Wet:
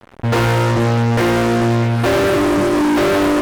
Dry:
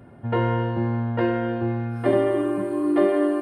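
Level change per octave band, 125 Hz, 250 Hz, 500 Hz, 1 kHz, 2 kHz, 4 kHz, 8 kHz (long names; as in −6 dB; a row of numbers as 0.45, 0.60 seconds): +10.0 dB, +7.0 dB, +6.0 dB, +10.0 dB, +13.5 dB, +18.0 dB, can't be measured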